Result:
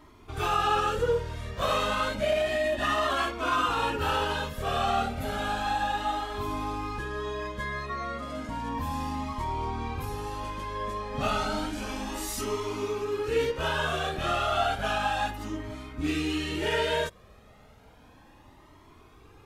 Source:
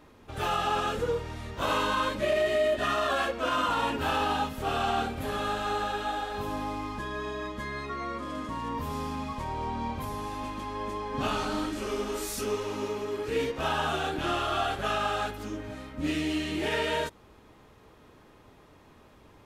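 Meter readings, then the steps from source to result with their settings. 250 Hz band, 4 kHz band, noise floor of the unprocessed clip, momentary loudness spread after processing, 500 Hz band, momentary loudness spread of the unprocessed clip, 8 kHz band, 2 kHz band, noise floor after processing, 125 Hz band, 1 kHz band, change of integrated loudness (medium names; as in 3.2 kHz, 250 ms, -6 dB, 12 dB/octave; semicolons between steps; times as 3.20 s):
-1.0 dB, +1.0 dB, -56 dBFS, 8 LU, +0.5 dB, 9 LU, +1.0 dB, +1.5 dB, -55 dBFS, +2.5 dB, +1.0 dB, +1.0 dB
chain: Shepard-style flanger rising 0.32 Hz; trim +5.5 dB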